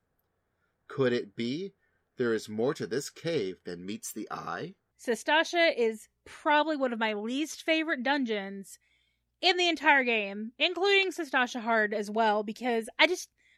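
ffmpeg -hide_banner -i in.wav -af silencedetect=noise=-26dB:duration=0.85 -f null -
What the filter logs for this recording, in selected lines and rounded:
silence_start: 0.00
silence_end: 0.99 | silence_duration: 0.99
silence_start: 8.38
silence_end: 9.43 | silence_duration: 1.05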